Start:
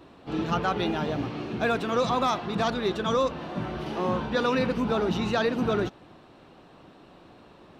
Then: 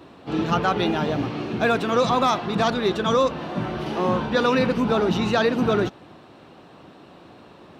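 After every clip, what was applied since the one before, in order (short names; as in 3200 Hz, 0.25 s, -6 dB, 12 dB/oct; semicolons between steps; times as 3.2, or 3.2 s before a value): HPF 70 Hz; gain +5 dB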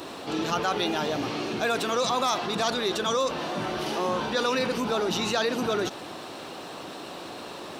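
tone controls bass -10 dB, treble +12 dB; fast leveller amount 50%; gain -6.5 dB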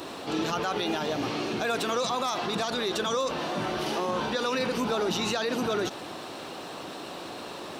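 limiter -19 dBFS, peak gain reduction 7 dB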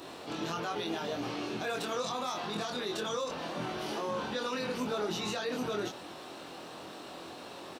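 doubler 24 ms -2.5 dB; gain -8.5 dB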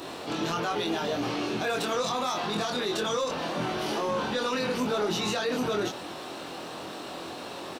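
soft clip -26 dBFS, distortion -22 dB; gain +7 dB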